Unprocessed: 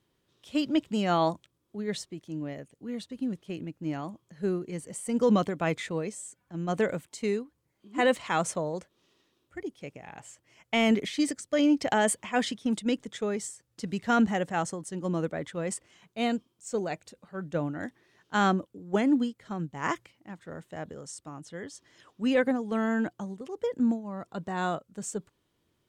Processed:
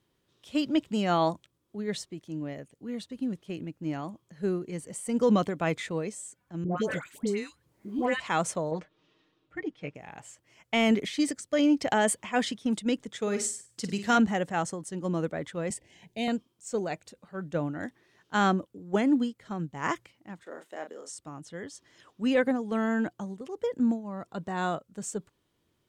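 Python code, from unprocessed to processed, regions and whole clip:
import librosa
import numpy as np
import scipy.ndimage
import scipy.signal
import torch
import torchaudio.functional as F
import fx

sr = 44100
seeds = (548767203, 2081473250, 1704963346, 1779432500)

y = fx.chain(x, sr, fx.dispersion(late='highs', ms=139.0, hz=1200.0),
    fx.dynamic_eq(hz=610.0, q=1.2, threshold_db=-36.0, ratio=4.0, max_db=-4),
    fx.band_squash(depth_pct=70), at=(6.64, 8.2))
y = fx.chain(y, sr, fx.dynamic_eq(hz=1800.0, q=1.1, threshold_db=-57.0, ratio=4.0, max_db=4),
    fx.lowpass(hz=3500.0, slope=12),
    fx.comb(ms=6.5, depth=0.78), at=(8.71, 9.95))
y = fx.chain(y, sr, fx.highpass(hz=41.0, slope=12),
    fx.peak_eq(hz=7600.0, db=7.0, octaves=2.9),
    fx.room_flutter(wall_m=8.5, rt60_s=0.34), at=(13.21, 14.18))
y = fx.chain(y, sr, fx.cheby1_bandstop(low_hz=890.0, high_hz=1800.0, order=2),
    fx.low_shelf(hz=220.0, db=6.5),
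    fx.band_squash(depth_pct=40), at=(15.7, 16.28))
y = fx.chain(y, sr, fx.highpass(hz=300.0, slope=24),
    fx.doubler(ms=33.0, db=-7.5), at=(20.43, 21.1))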